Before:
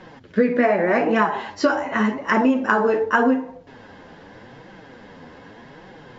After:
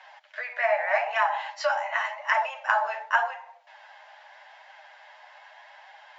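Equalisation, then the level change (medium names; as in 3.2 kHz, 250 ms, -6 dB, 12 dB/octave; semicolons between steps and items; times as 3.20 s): rippled Chebyshev high-pass 590 Hz, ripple 6 dB; 0.0 dB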